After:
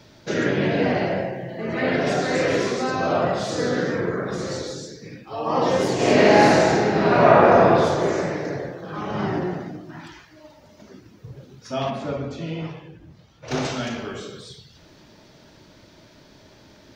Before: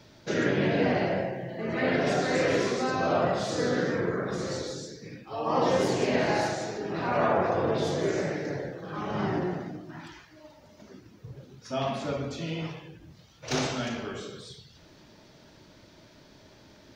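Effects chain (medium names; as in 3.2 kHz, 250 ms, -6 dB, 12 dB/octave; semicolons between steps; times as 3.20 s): 5.95–7.62 s: reverb throw, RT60 2.2 s, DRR -7.5 dB; 11.90–13.65 s: treble shelf 2.8 kHz -9 dB; trim +4 dB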